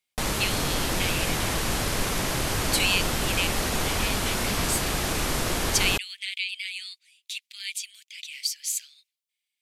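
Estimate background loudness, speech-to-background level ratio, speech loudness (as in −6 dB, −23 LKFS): −26.5 LKFS, −3.5 dB, −30.0 LKFS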